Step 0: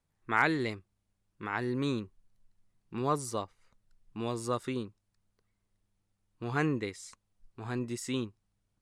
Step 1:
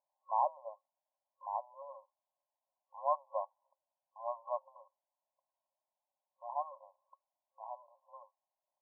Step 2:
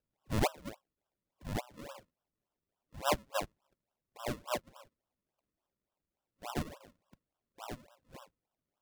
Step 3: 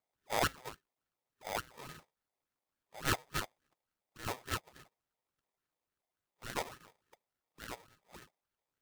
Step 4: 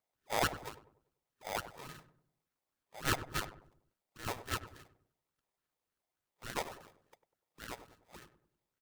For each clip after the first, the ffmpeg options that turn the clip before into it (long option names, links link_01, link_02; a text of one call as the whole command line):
ffmpeg -i in.wav -af "afftfilt=real='re*between(b*sr/4096,530,1100)':imag='im*between(b*sr/4096,530,1100)':win_size=4096:overlap=0.75,volume=1.5dB" out.wav
ffmpeg -i in.wav -af "acrusher=samples=39:mix=1:aa=0.000001:lfo=1:lforange=39:lforate=3.5,volume=1.5dB" out.wav
ffmpeg -i in.wav -af "aeval=exprs='val(0)*sgn(sin(2*PI*700*n/s))':channel_layout=same,volume=-2dB" out.wav
ffmpeg -i in.wav -filter_complex "[0:a]asplit=2[link_01][link_02];[link_02]adelay=98,lowpass=frequency=980:poles=1,volume=-10.5dB,asplit=2[link_03][link_04];[link_04]adelay=98,lowpass=frequency=980:poles=1,volume=0.45,asplit=2[link_05][link_06];[link_06]adelay=98,lowpass=frequency=980:poles=1,volume=0.45,asplit=2[link_07][link_08];[link_08]adelay=98,lowpass=frequency=980:poles=1,volume=0.45,asplit=2[link_09][link_10];[link_10]adelay=98,lowpass=frequency=980:poles=1,volume=0.45[link_11];[link_01][link_03][link_05][link_07][link_09][link_11]amix=inputs=6:normalize=0" out.wav